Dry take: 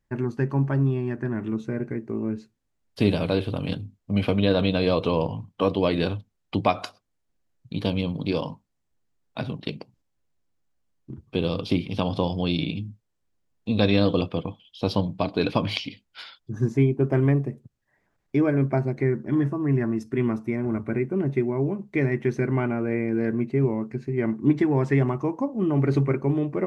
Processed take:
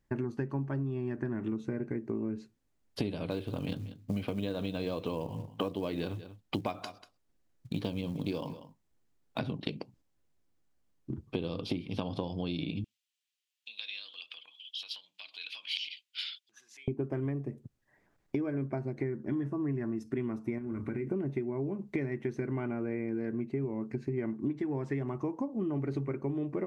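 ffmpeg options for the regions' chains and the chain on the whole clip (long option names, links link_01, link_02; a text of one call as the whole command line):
ffmpeg -i in.wav -filter_complex "[0:a]asettb=1/sr,asplit=3[link_01][link_02][link_03];[link_01]atrim=end=3.304[link_04];[link_02]atrim=start=3.3:end=9.39,asetpts=PTS-STARTPTS,afade=type=in:duration=0.004:curve=qsin,afade=type=out:start_time=6.086:duration=0.004:curve=qsin,acrusher=bits=7:mode=log:mix=0:aa=0.000001,aecho=1:1:190:0.0841,atrim=end_sample=268569[link_05];[link_03]atrim=start=9.386[link_06];[link_04][link_05]acrossfade=duration=0.004:curve1=hsin:curve2=qsin[link_07];[link_07][link_06]acrossfade=duration=0.004:curve1=qsin:curve2=hsin,asettb=1/sr,asplit=3[link_08][link_09][link_10];[link_08]atrim=end=12.844[link_11];[link_09]atrim=start=12.84:end=16.88,asetpts=PTS-STARTPTS,afade=type=in:duration=0.004:curve=qsin,afade=type=out:start_time=4.036:duration=0.004:curve=qsin,acompressor=threshold=-34dB:ratio=4:attack=3.2:release=140:knee=1:detection=peak,highpass=frequency=2900:width_type=q:width=2.3[link_12];[link_10]atrim=start=16.876[link_13];[link_11][link_12]acrossfade=duration=0.004:curve1=hsin:curve2=qsin[link_14];[link_14][link_13]acrossfade=duration=0.004:curve1=qsin:curve2=hsin,asettb=1/sr,asplit=3[link_15][link_16][link_17];[link_15]atrim=end=20.584[link_18];[link_16]atrim=start=20.58:end=21.07,asetpts=PTS-STARTPTS,afade=type=in:duration=0.004:curve=qsin,afade=type=out:start_time=0.486:duration=0.004:curve=qsin,equalizer=frequency=690:width_type=o:width=0.51:gain=-14,acompressor=threshold=-32dB:ratio=4:attack=3.2:release=140:knee=1:detection=peak,asplit=2[link_19][link_20];[link_20]adelay=29,volume=-12dB[link_21];[link_19][link_21]amix=inputs=2:normalize=0,atrim=end_sample=21609[link_22];[link_17]atrim=start=21.066[link_23];[link_18][link_22]acrossfade=duration=0.004:curve1=hsin:curve2=qsin[link_24];[link_24][link_23]acrossfade=duration=0.004:curve1=qsin:curve2=hsin,equalizer=frequency=310:width=1.5:gain=3.5,acompressor=threshold=-30dB:ratio=12" out.wav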